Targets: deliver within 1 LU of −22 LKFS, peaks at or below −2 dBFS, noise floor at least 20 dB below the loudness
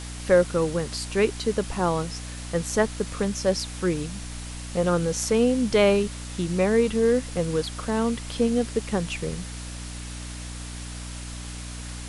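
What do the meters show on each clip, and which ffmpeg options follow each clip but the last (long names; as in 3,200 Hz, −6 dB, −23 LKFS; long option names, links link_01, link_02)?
mains hum 60 Hz; hum harmonics up to 300 Hz; level of the hum −34 dBFS; background noise floor −36 dBFS; target noise floor −45 dBFS; integrated loudness −25.0 LKFS; sample peak −6.0 dBFS; target loudness −22.0 LKFS
→ -af "bandreject=frequency=60:width_type=h:width=6,bandreject=frequency=120:width_type=h:width=6,bandreject=frequency=180:width_type=h:width=6,bandreject=frequency=240:width_type=h:width=6,bandreject=frequency=300:width_type=h:width=6"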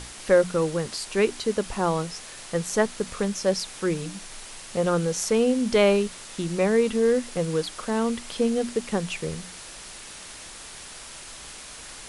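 mains hum none found; background noise floor −42 dBFS; target noise floor −45 dBFS
→ -af "afftdn=noise_reduction=6:noise_floor=-42"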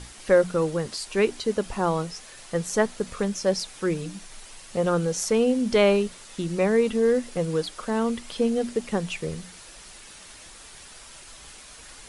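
background noise floor −46 dBFS; integrated loudness −25.0 LKFS; sample peak −6.5 dBFS; target loudness −22.0 LKFS
→ -af "volume=3dB"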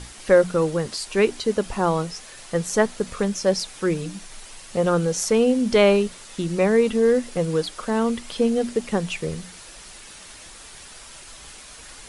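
integrated loudness −22.0 LKFS; sample peak −3.5 dBFS; background noise floor −43 dBFS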